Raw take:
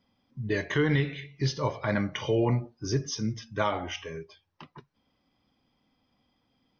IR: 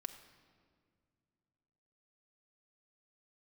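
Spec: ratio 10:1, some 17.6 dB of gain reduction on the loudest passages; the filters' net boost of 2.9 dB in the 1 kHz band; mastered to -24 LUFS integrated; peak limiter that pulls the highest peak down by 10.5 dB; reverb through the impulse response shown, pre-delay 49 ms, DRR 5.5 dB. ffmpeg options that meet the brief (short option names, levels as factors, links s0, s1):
-filter_complex "[0:a]equalizer=f=1000:t=o:g=3.5,acompressor=threshold=0.0112:ratio=10,alimiter=level_in=3.76:limit=0.0631:level=0:latency=1,volume=0.266,asplit=2[s0][s1];[1:a]atrim=start_sample=2205,adelay=49[s2];[s1][s2]afir=irnorm=-1:irlink=0,volume=0.75[s3];[s0][s3]amix=inputs=2:normalize=0,volume=11.9"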